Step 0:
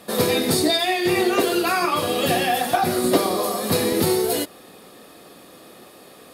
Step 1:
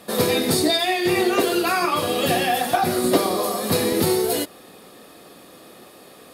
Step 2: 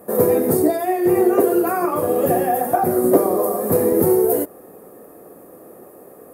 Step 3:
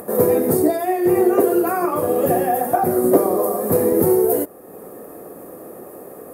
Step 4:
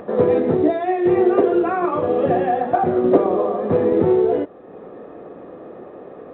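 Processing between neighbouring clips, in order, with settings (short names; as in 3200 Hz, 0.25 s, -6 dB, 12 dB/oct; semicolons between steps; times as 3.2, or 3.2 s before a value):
nothing audible
EQ curve 230 Hz 0 dB, 450 Hz +6 dB, 1800 Hz -8 dB, 3700 Hz -28 dB, 14000 Hz +6 dB; gain +1 dB
upward compressor, threshold -29 dBFS
A-law 64 kbps 8000 Hz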